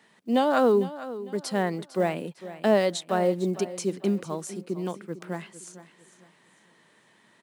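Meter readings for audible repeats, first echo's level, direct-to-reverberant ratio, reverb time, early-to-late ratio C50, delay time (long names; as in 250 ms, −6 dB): 3, −15.0 dB, no reverb audible, no reverb audible, no reverb audible, 453 ms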